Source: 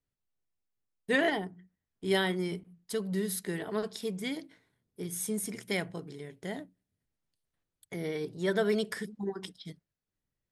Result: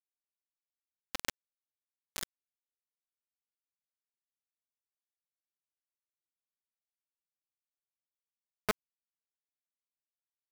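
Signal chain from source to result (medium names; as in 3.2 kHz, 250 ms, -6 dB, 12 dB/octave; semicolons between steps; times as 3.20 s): echo whose repeats swap between lows and highs 696 ms, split 1 kHz, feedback 51%, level -6.5 dB; LFO band-pass saw up 2.2 Hz 420–2300 Hz; small samples zeroed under -26 dBFS; trim +9.5 dB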